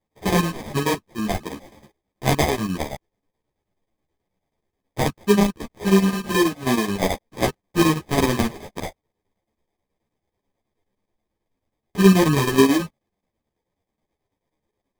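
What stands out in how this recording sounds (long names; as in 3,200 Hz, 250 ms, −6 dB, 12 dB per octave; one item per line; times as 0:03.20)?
chopped level 9.3 Hz, depth 60%, duty 70%
aliases and images of a low sample rate 1,400 Hz, jitter 0%
a shimmering, thickened sound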